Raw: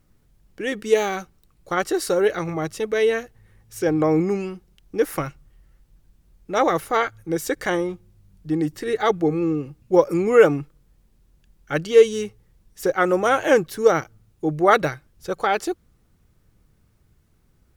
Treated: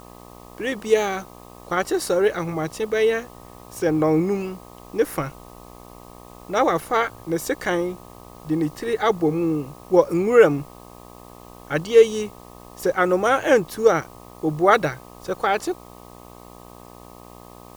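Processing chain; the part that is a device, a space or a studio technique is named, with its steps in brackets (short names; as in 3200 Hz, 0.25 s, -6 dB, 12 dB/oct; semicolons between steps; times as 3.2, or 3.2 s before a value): video cassette with head-switching buzz (buzz 60 Hz, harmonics 21, -44 dBFS -1 dB/oct; white noise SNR 31 dB)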